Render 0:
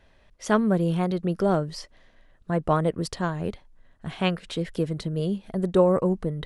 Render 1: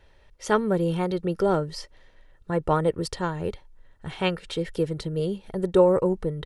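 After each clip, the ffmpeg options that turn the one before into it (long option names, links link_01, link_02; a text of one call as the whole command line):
ffmpeg -i in.wav -af "aecho=1:1:2.2:0.46" out.wav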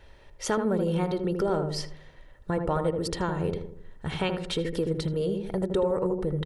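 ffmpeg -i in.wav -filter_complex "[0:a]acompressor=threshold=-31dB:ratio=3,asplit=2[link_01][link_02];[link_02]adelay=79,lowpass=frequency=820:poles=1,volume=-3.5dB,asplit=2[link_03][link_04];[link_04]adelay=79,lowpass=frequency=820:poles=1,volume=0.52,asplit=2[link_05][link_06];[link_06]adelay=79,lowpass=frequency=820:poles=1,volume=0.52,asplit=2[link_07][link_08];[link_08]adelay=79,lowpass=frequency=820:poles=1,volume=0.52,asplit=2[link_09][link_10];[link_10]adelay=79,lowpass=frequency=820:poles=1,volume=0.52,asplit=2[link_11][link_12];[link_12]adelay=79,lowpass=frequency=820:poles=1,volume=0.52,asplit=2[link_13][link_14];[link_14]adelay=79,lowpass=frequency=820:poles=1,volume=0.52[link_15];[link_03][link_05][link_07][link_09][link_11][link_13][link_15]amix=inputs=7:normalize=0[link_16];[link_01][link_16]amix=inputs=2:normalize=0,volume=4dB" out.wav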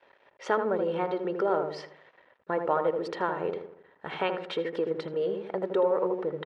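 ffmpeg -i in.wav -af "aeval=exprs='sgn(val(0))*max(abs(val(0))-0.00178,0)':channel_layout=same,highpass=440,lowpass=2200,volume=3.5dB" out.wav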